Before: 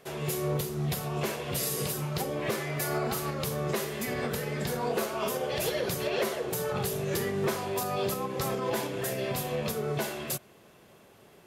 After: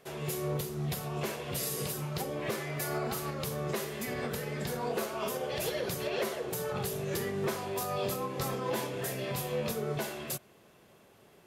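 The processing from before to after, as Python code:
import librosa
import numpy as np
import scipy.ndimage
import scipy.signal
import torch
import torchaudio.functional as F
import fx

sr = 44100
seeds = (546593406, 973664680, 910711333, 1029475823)

y = fx.doubler(x, sr, ms=22.0, db=-6.0, at=(7.78, 9.96))
y = F.gain(torch.from_numpy(y), -3.5).numpy()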